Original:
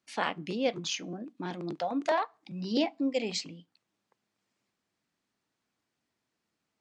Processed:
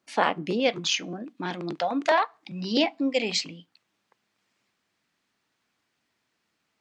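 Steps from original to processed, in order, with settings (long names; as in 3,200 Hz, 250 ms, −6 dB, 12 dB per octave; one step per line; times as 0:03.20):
parametric band 570 Hz +6.5 dB 2.8 octaves, from 0:00.60 2,300 Hz
level +3 dB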